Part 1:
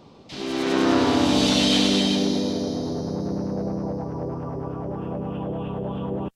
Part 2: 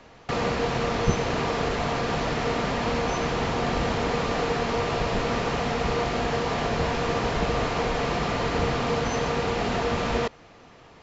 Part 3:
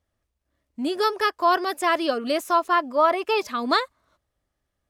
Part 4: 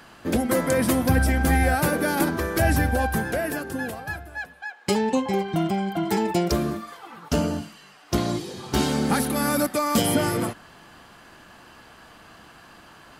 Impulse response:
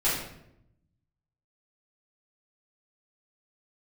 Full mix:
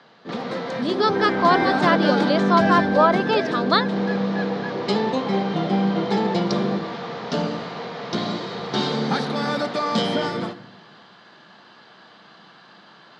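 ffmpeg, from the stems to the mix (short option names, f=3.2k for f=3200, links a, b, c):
-filter_complex "[0:a]lowpass=1k,volume=22dB,asoftclip=hard,volume=-22dB,adelay=500,volume=-1dB,asplit=2[a][b];[b]volume=-12.5dB[c];[1:a]asoftclip=type=tanh:threshold=-19.5dB,volume=-4dB[d];[2:a]volume=2dB,asplit=2[e][f];[3:a]equalizer=f=3.8k:w=1.6:g=4,volume=-1dB,afade=t=in:st=1.08:d=0.51:silence=0.446684,asplit=2[g][h];[h]volume=-22.5dB[i];[f]apad=whole_len=486285[j];[d][j]sidechaincompress=threshold=-27dB:ratio=8:attack=16:release=196[k];[4:a]atrim=start_sample=2205[l];[c][i]amix=inputs=2:normalize=0[m];[m][l]afir=irnorm=-1:irlink=0[n];[a][k][e][g][n]amix=inputs=5:normalize=0,highpass=f=150:w=0.5412,highpass=f=150:w=1.3066,equalizer=f=190:t=q:w=4:g=3,equalizer=f=280:t=q:w=4:g=-5,equalizer=f=2.6k:t=q:w=4:g=-6,equalizer=f=3.8k:t=q:w=4:g=4,lowpass=f=5k:w=0.5412,lowpass=f=5k:w=1.3066"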